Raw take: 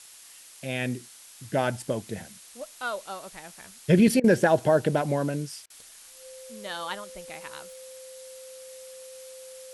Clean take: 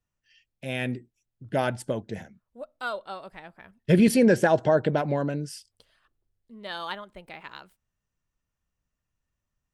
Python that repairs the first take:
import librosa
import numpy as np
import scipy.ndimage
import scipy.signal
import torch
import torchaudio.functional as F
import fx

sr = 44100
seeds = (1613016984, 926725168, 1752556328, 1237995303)

y = fx.notch(x, sr, hz=520.0, q=30.0)
y = fx.fix_interpolate(y, sr, at_s=(4.2, 5.66), length_ms=39.0)
y = fx.noise_reduce(y, sr, print_start_s=5.65, print_end_s=6.15, reduce_db=30.0)